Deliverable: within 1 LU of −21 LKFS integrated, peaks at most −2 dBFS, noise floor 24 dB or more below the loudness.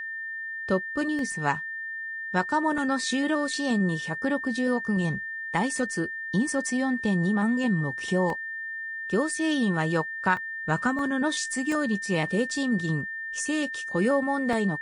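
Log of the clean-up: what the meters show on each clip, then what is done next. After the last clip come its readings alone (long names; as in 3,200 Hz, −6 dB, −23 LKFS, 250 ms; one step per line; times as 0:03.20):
number of dropouts 7; longest dropout 1.6 ms; interfering tone 1,800 Hz; level of the tone −32 dBFS; integrated loudness −27.0 LKFS; sample peak −9.5 dBFS; target loudness −21.0 LKFS
→ repair the gap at 0:01.19/0:02.78/0:08.30/0:10.37/0:10.99/0:11.72/0:14.53, 1.6 ms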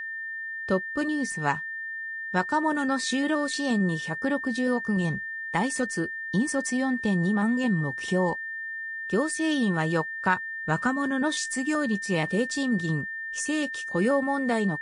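number of dropouts 0; interfering tone 1,800 Hz; level of the tone −32 dBFS
→ notch filter 1,800 Hz, Q 30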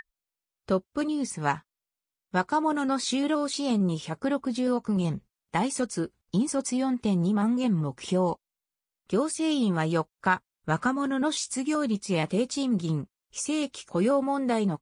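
interfering tone none found; integrated loudness −27.5 LKFS; sample peak −10.5 dBFS; target loudness −21.0 LKFS
→ level +6.5 dB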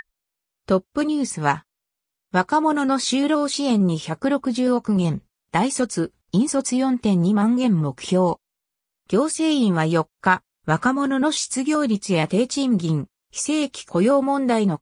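integrated loudness −21.0 LKFS; sample peak −4.0 dBFS; background noise floor −83 dBFS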